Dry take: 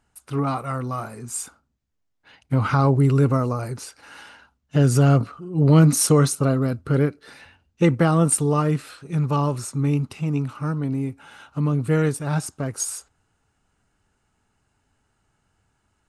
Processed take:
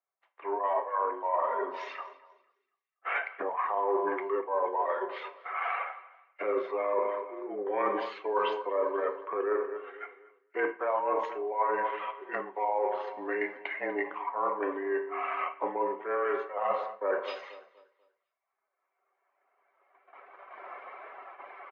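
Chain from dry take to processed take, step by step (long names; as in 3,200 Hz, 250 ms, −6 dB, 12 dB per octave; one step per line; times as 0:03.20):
camcorder AGC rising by 11 dB per second
reverb reduction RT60 1.5 s
wrong playback speed 45 rpm record played at 33 rpm
noise gate −44 dBFS, range −11 dB
repeating echo 244 ms, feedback 49%, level −17 dB
feedback delay network reverb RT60 0.69 s, low-frequency decay 0.85×, high-frequency decay 0.85×, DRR 6 dB
in parallel at −11 dB: slack as between gear wheels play −31 dBFS
on the sum: single-sideband voice off tune +90 Hz 380–2,300 Hz
reversed playback
downward compressor 10 to 1, threshold −32 dBFS, peak gain reduction 17.5 dB
reversed playback
multiband upward and downward expander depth 40%
level +5.5 dB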